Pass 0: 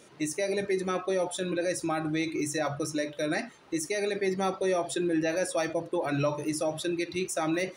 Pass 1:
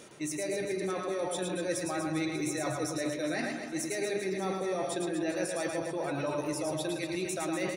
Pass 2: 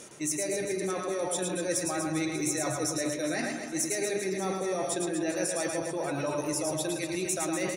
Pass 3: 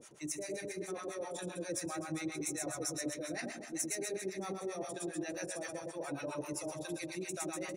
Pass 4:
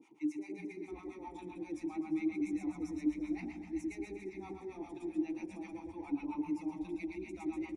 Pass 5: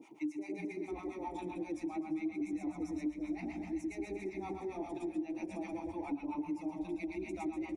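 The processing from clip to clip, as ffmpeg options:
-af "areverse,acompressor=threshold=0.0158:ratio=10,areverse,aecho=1:1:110|242|400.4|590.5|818.6:0.631|0.398|0.251|0.158|0.1,volume=1.68"
-af "lowpass=12000,aexciter=amount=1.6:drive=8.5:freq=5700,volume=1.19"
-filter_complex "[0:a]acrossover=split=680[s0][s1];[s0]aeval=exprs='val(0)*(1-1/2+1/2*cos(2*PI*7.5*n/s))':c=same[s2];[s1]aeval=exprs='val(0)*(1-1/2-1/2*cos(2*PI*7.5*n/s))':c=same[s3];[s2][s3]amix=inputs=2:normalize=0,volume=0.596"
-filter_complex "[0:a]asplit=3[s0][s1][s2];[s0]bandpass=f=300:t=q:w=8,volume=1[s3];[s1]bandpass=f=870:t=q:w=8,volume=0.501[s4];[s2]bandpass=f=2240:t=q:w=8,volume=0.355[s5];[s3][s4][s5]amix=inputs=3:normalize=0,asplit=6[s6][s7][s8][s9][s10][s11];[s7]adelay=346,afreqshift=-120,volume=0.106[s12];[s8]adelay=692,afreqshift=-240,volume=0.0603[s13];[s9]adelay=1038,afreqshift=-360,volume=0.0343[s14];[s10]adelay=1384,afreqshift=-480,volume=0.0197[s15];[s11]adelay=1730,afreqshift=-600,volume=0.0112[s16];[s6][s12][s13][s14][s15][s16]amix=inputs=6:normalize=0,volume=2.82"
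-af "equalizer=f=630:w=3.5:g=11,acompressor=threshold=0.00794:ratio=3,volume=1.88"

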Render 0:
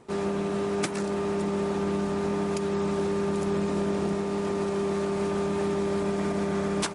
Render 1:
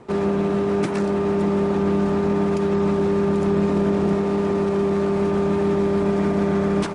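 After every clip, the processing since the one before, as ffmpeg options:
-filter_complex "[0:a]lowpass=f=2500:p=1,acrossover=split=370[s0][s1];[s1]alimiter=level_in=1.58:limit=0.0631:level=0:latency=1:release=34,volume=0.631[s2];[s0][s2]amix=inputs=2:normalize=0,volume=2.66"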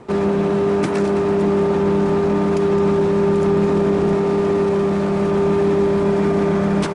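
-af "asoftclip=type=tanh:threshold=0.251,aecho=1:1:213:0.316,volume=1.58"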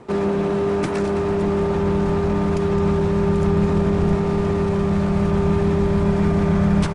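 -af "asubboost=boost=8:cutoff=110,volume=0.794"

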